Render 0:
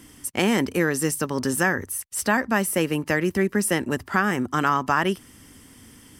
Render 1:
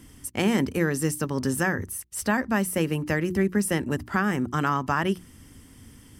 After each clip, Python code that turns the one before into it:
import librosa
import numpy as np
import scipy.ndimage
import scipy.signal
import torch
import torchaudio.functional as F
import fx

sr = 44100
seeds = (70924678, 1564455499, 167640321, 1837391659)

y = fx.low_shelf(x, sr, hz=180.0, db=11.5)
y = fx.hum_notches(y, sr, base_hz=60, count=6)
y = F.gain(torch.from_numpy(y), -4.5).numpy()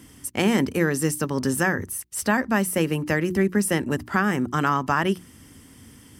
y = fx.highpass(x, sr, hz=110.0, slope=6)
y = F.gain(torch.from_numpy(y), 3.0).numpy()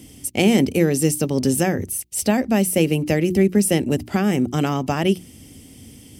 y = fx.band_shelf(x, sr, hz=1300.0, db=-13.0, octaves=1.2)
y = F.gain(torch.from_numpy(y), 5.0).numpy()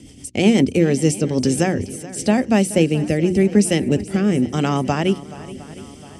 y = scipy.signal.sosfilt(scipy.signal.butter(4, 8800.0, 'lowpass', fs=sr, output='sos'), x)
y = fx.rotary_switch(y, sr, hz=8.0, then_hz=0.9, switch_at_s=0.55)
y = fx.echo_swing(y, sr, ms=710, ratio=1.5, feedback_pct=48, wet_db=-17.5)
y = F.gain(torch.from_numpy(y), 3.0).numpy()